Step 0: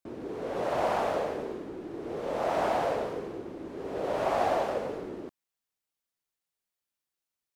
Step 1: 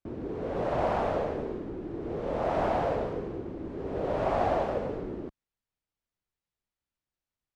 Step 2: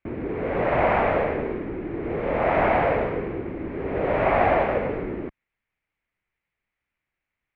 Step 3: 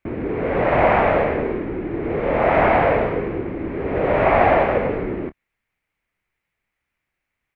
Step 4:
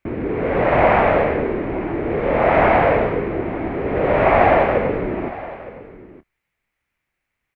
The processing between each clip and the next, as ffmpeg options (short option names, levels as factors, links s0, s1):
-af "aemphasis=mode=reproduction:type=bsi,volume=0.891"
-af "lowpass=f=2200:t=q:w=4,volume=2"
-filter_complex "[0:a]asplit=2[s0][s1];[s1]adelay=27,volume=0.2[s2];[s0][s2]amix=inputs=2:normalize=0,volume=1.68"
-af "aecho=1:1:913:0.141,volume=1.19"